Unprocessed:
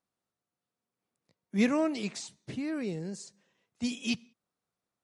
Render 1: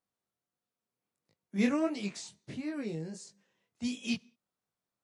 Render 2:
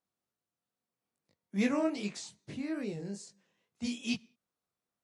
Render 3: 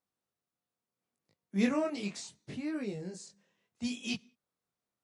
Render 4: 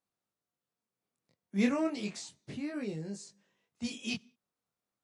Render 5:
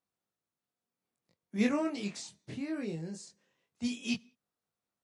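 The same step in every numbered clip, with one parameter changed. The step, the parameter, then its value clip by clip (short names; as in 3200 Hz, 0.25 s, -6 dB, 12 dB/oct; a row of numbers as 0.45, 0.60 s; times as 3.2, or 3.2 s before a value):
chorus, rate: 1.5, 2.4, 0.72, 0.32, 0.21 Hz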